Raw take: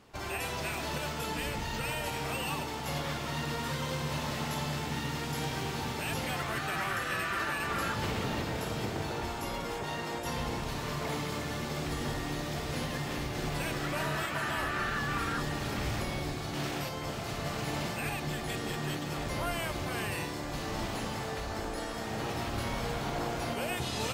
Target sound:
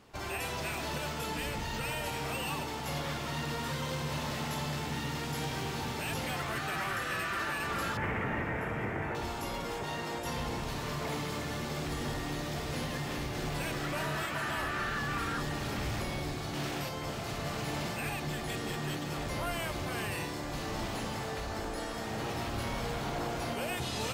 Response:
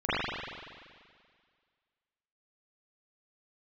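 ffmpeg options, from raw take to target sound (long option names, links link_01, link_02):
-filter_complex "[0:a]asoftclip=type=tanh:threshold=-26dB,asettb=1/sr,asplit=3[link_01][link_02][link_03];[link_01]atrim=end=7.974[link_04];[link_02]atrim=start=7.97:end=9.15,asetpts=PTS-STARTPTS,afade=type=in:duration=0.004:curve=qsin,afade=type=out:start_time=1.176:duration=0.004:curve=qsin,highshelf=frequency=2900:width_type=q:width=3:gain=-13[link_05];[link_03]atrim=start=9.146[link_06];[link_04][link_05]acrossfade=duration=0.004:curve1=hsin:curve2=qsin[link_07];[link_07][link_06]acrossfade=duration=0.004:curve1=qsin:curve2=hsin"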